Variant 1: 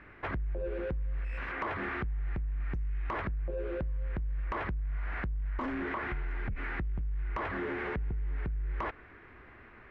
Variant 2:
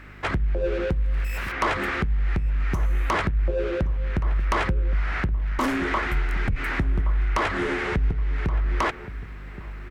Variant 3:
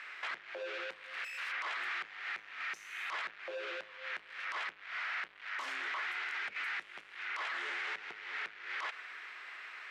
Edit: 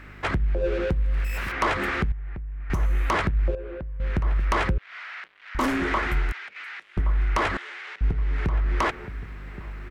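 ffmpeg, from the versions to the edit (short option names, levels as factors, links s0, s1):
-filter_complex "[0:a]asplit=2[s0][s1];[2:a]asplit=3[s2][s3][s4];[1:a]asplit=6[s5][s6][s7][s8][s9][s10];[s5]atrim=end=2.122[s11];[s0]atrim=start=2.118:end=2.702[s12];[s6]atrim=start=2.698:end=3.552[s13];[s1]atrim=start=3.548:end=4.002[s14];[s7]atrim=start=3.998:end=4.782[s15];[s2]atrim=start=4.778:end=5.552[s16];[s8]atrim=start=5.548:end=6.322[s17];[s3]atrim=start=6.318:end=6.972[s18];[s9]atrim=start=6.968:end=7.572[s19];[s4]atrim=start=7.568:end=8.012[s20];[s10]atrim=start=8.008[s21];[s11][s12]acrossfade=d=0.004:c1=hsin:c2=hsin[s22];[s22][s13]acrossfade=d=0.004:c1=hsin:c2=hsin[s23];[s23][s14]acrossfade=d=0.004:c1=hsin:c2=hsin[s24];[s24][s15]acrossfade=d=0.004:c1=hsin:c2=hsin[s25];[s25][s16]acrossfade=d=0.004:c1=hsin:c2=hsin[s26];[s26][s17]acrossfade=d=0.004:c1=hsin:c2=hsin[s27];[s27][s18]acrossfade=d=0.004:c1=hsin:c2=hsin[s28];[s28][s19]acrossfade=d=0.004:c1=hsin:c2=hsin[s29];[s29][s20]acrossfade=d=0.004:c1=hsin:c2=hsin[s30];[s30][s21]acrossfade=d=0.004:c1=hsin:c2=hsin"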